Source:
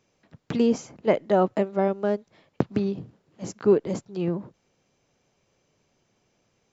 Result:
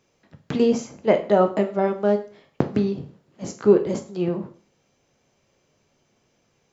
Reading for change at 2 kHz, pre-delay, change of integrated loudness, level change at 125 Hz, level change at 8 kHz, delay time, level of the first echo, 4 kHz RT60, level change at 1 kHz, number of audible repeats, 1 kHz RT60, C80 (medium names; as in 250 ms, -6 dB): +3.0 dB, 6 ms, +3.0 dB, +2.0 dB, no reading, no echo, no echo, 0.40 s, +2.5 dB, no echo, 0.40 s, 17.0 dB